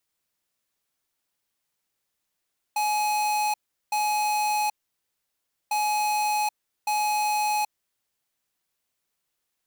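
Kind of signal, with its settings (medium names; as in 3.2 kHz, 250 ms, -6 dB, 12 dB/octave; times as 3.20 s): beep pattern square 842 Hz, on 0.78 s, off 0.38 s, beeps 2, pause 1.01 s, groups 2, -24.5 dBFS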